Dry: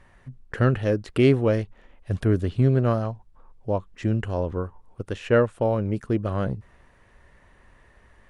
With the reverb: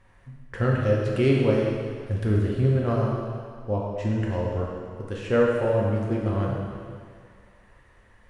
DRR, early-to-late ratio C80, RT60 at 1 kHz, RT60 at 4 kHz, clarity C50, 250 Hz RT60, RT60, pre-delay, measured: -3.5 dB, 1.5 dB, 2.1 s, 2.1 s, 0.0 dB, 1.9 s, 2.1 s, 3 ms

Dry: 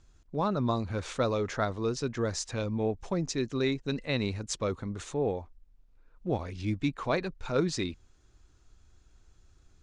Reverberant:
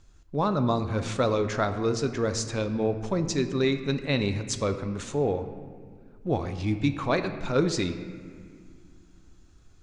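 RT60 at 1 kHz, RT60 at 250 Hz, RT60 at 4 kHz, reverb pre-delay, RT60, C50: 1.8 s, 3.0 s, 1.3 s, 7 ms, 2.0 s, 10.0 dB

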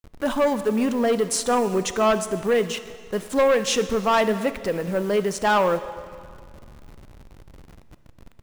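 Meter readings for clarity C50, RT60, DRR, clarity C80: 12.5 dB, 2.1 s, 11.5 dB, 13.5 dB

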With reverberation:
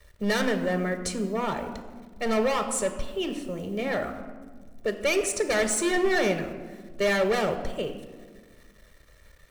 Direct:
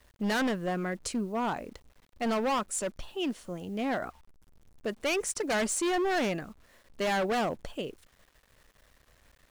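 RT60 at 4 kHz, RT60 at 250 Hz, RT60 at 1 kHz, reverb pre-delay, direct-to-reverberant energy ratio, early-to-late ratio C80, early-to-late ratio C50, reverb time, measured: 0.85 s, 2.1 s, 1.3 s, 3 ms, 7.5 dB, 11.0 dB, 9.5 dB, 1.6 s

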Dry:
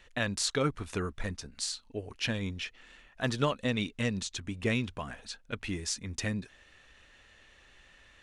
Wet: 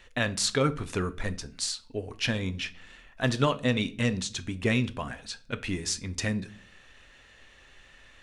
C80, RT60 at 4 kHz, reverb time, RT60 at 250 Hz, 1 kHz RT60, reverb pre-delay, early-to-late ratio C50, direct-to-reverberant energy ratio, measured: 23.5 dB, 0.35 s, 0.45 s, 0.60 s, 0.40 s, 7 ms, 19.0 dB, 12.0 dB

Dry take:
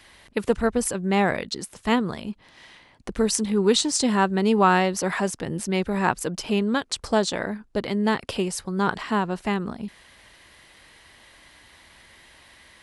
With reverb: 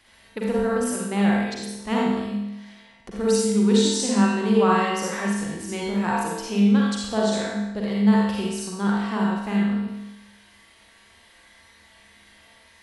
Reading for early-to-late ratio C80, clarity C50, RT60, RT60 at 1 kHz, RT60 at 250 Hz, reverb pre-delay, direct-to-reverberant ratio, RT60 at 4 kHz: 1.0 dB, -3.0 dB, 0.95 s, 0.95 s, 0.90 s, 39 ms, -5.0 dB, 0.90 s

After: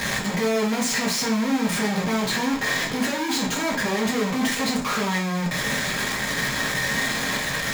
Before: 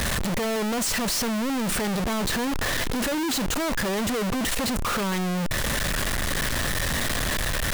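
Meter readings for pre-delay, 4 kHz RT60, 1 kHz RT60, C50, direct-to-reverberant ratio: 3 ms, 0.40 s, 0.45 s, 8.0 dB, -3.0 dB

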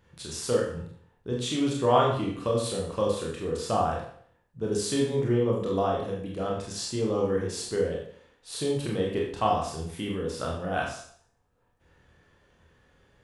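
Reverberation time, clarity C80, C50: 0.55 s, 7.0 dB, 4.0 dB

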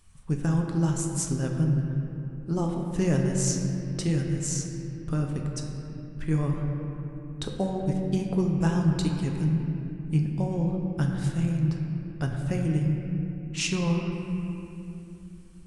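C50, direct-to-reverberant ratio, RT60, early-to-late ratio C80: 2.5 dB, 0.5 dB, 2.8 s, 3.5 dB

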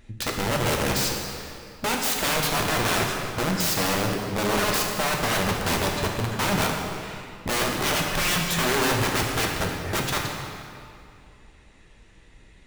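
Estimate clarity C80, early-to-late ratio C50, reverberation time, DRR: 3.5 dB, 2.0 dB, 2.5 s, -0.5 dB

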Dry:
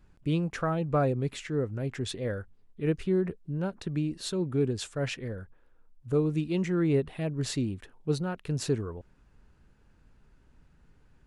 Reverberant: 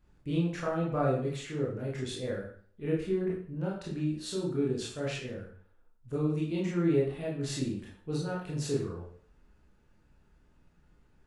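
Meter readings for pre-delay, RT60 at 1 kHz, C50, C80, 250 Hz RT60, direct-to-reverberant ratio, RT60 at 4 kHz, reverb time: 19 ms, 0.50 s, 4.0 dB, 8.0 dB, 0.55 s, -5.0 dB, 0.45 s, 0.50 s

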